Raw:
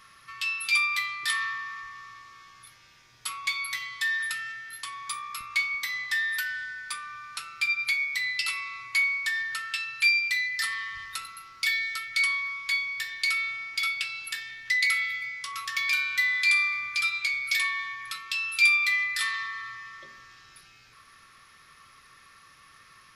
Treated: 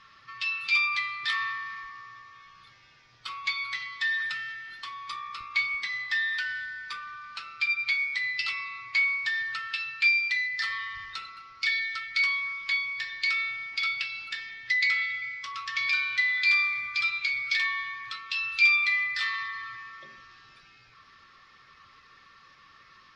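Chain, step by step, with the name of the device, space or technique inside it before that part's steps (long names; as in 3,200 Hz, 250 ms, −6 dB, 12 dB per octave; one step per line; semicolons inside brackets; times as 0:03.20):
clip after many re-uploads (low-pass filter 5,100 Hz 24 dB per octave; spectral magnitudes quantised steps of 15 dB)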